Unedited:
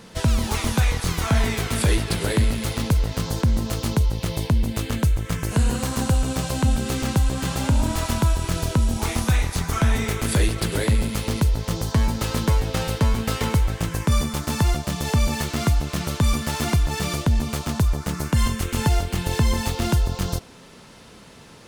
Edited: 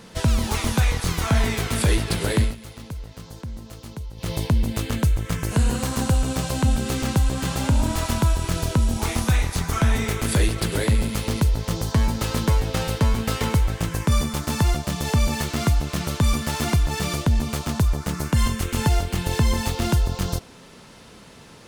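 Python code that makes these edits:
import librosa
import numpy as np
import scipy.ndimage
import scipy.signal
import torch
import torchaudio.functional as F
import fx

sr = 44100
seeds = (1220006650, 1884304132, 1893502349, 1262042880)

y = fx.edit(x, sr, fx.fade_down_up(start_s=2.41, length_s=1.9, db=-14.0, fade_s=0.15), tone=tone)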